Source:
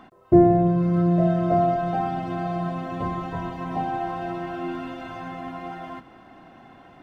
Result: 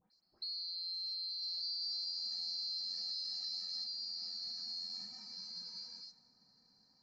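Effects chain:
neighbouring bands swapped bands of 4,000 Hz
parametric band 90 Hz +3.5 dB 2.1 octaves
all-pass dispersion highs, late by 143 ms, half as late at 2,700 Hz
downward compressor 6 to 1, threshold −27 dBFS, peak gain reduction 16 dB
low-pass that shuts in the quiet parts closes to 1,100 Hz, open at −19.5 dBFS
brickwall limiter −35.5 dBFS, peak gain reduction 16 dB
0:01.42–0:03.84: bass and treble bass −6 dB, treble +4 dB

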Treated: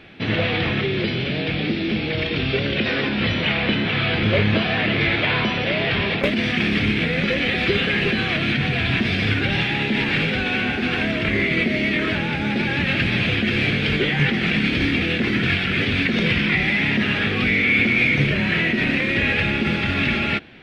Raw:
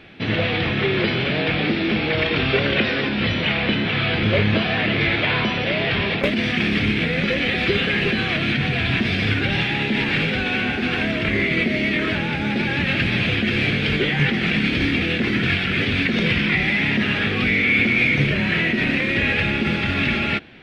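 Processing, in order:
0:00.81–0:02.86: parametric band 1,100 Hz −8 dB 2.1 octaves

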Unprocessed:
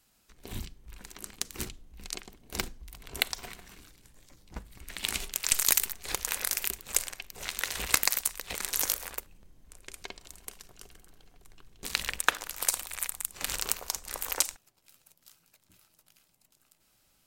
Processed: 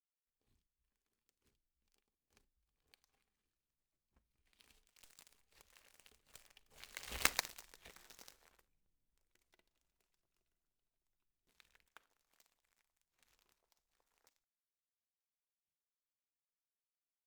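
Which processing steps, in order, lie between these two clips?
gap after every zero crossing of 0.056 ms
source passing by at 0:07.28, 30 m/s, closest 2.8 metres
level −4.5 dB

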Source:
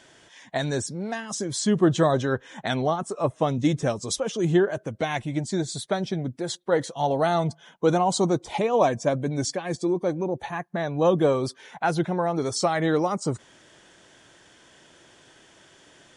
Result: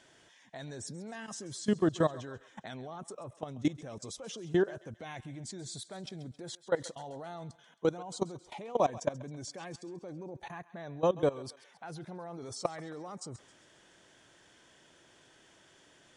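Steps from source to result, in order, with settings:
output level in coarse steps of 19 dB
feedback echo with a high-pass in the loop 134 ms, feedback 53%, high-pass 730 Hz, level −16.5 dB
level −5 dB

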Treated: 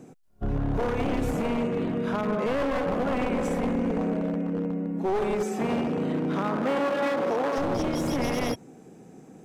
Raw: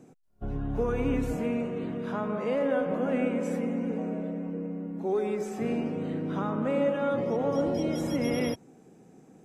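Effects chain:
wavefolder on the positive side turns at −28 dBFS
0:05.47–0:07.57: high-pass filter 93 Hz → 320 Hz 12 dB per octave
brickwall limiter −23.5 dBFS, peak gain reduction 7 dB
level +6 dB

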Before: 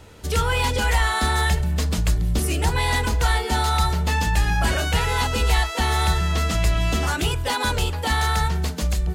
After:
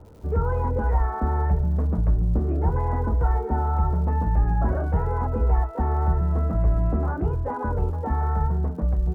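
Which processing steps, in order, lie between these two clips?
Bessel low-pass filter 780 Hz, order 6
surface crackle 190 per second −47 dBFS

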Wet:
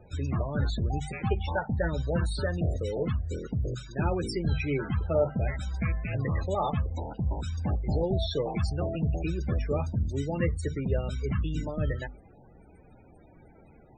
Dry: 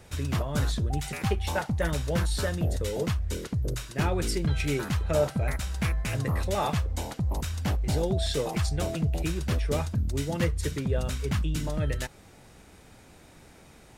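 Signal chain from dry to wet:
spectral peaks only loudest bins 32
mains-hum notches 50/100/150/200/250 Hz

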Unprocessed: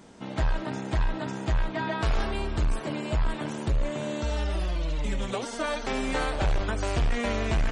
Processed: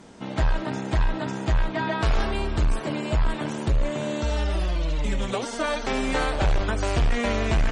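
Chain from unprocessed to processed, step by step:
low-pass filter 11,000 Hz
level +3.5 dB

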